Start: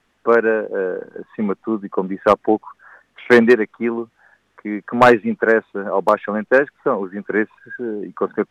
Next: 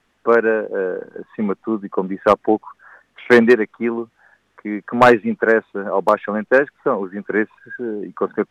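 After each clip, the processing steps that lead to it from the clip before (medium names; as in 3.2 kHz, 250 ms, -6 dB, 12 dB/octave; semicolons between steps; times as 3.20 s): no audible change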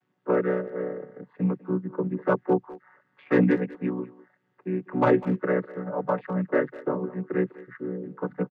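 vocoder on a held chord minor triad, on B2; speakerphone echo 200 ms, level -17 dB; trim -7.5 dB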